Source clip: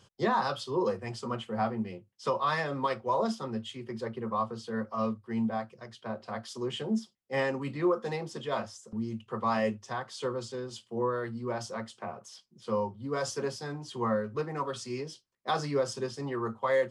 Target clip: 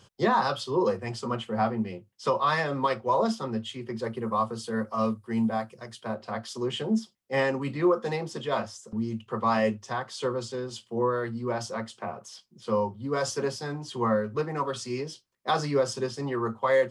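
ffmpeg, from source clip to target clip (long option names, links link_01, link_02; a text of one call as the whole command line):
ffmpeg -i in.wav -filter_complex "[0:a]asettb=1/sr,asplit=3[link_01][link_02][link_03];[link_01]atrim=end=4.044[link_04];[link_02]atrim=start=4.04:end=6.15,asetpts=PTS-STARTPTS,afade=type=in:duration=0.004:curve=qsin,afade=type=out:start_time=2.106:duration=0.004:curve=qsin,equalizer=frequency=9700:width_type=o:width=0.82:gain=12[link_05];[link_03]atrim=start=6.146[link_06];[link_04][link_05]acrossfade=duration=0.004:curve1=hsin:curve2=qsin[link_07];[link_07][link_06]acrossfade=duration=0.004:curve1=qsin:curve2=hsin,volume=4dB" out.wav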